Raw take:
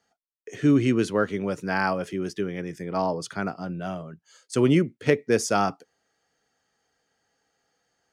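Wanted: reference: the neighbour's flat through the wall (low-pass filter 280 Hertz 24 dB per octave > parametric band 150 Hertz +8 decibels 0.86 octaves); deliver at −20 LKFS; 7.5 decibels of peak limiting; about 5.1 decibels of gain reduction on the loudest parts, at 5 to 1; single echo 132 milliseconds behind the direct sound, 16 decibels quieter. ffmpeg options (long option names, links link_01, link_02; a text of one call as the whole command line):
ffmpeg -i in.wav -af "acompressor=threshold=-20dB:ratio=5,alimiter=limit=-18dB:level=0:latency=1,lowpass=frequency=280:width=0.5412,lowpass=frequency=280:width=1.3066,equalizer=frequency=150:width_type=o:width=0.86:gain=8,aecho=1:1:132:0.158,volume=10.5dB" out.wav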